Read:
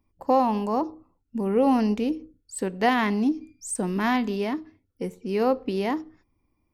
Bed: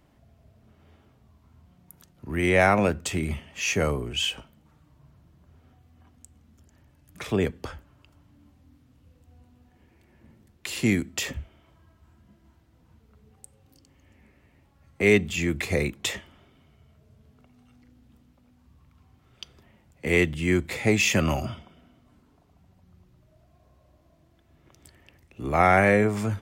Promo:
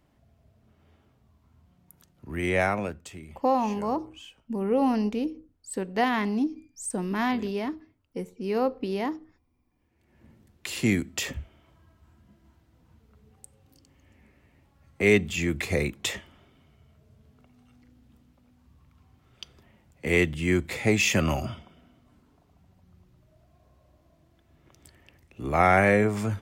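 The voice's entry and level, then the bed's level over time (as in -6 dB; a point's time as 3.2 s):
3.15 s, -3.0 dB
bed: 2.6 s -4.5 dB
3.45 s -20.5 dB
9.67 s -20.5 dB
10.22 s -1 dB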